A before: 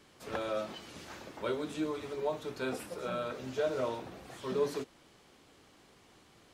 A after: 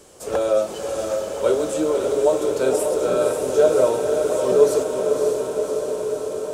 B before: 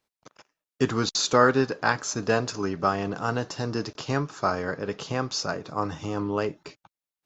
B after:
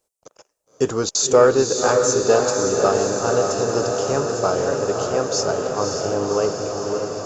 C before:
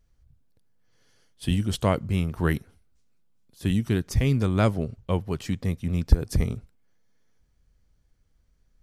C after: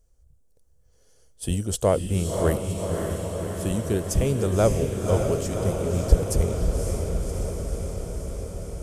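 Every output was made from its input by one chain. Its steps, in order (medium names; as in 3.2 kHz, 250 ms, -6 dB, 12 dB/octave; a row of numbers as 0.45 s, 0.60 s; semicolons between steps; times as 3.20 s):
ten-band graphic EQ 125 Hz -6 dB, 250 Hz -7 dB, 500 Hz +7 dB, 1 kHz -4 dB, 2 kHz -9 dB, 4 kHz -7 dB, 8 kHz +9 dB; in parallel at -11.5 dB: hard clipper -15 dBFS; on the sum: echo that smears into a reverb 559 ms, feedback 74%, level -4.5 dB; peak normalisation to -3 dBFS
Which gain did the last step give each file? +11.5 dB, +3.5 dB, +1.0 dB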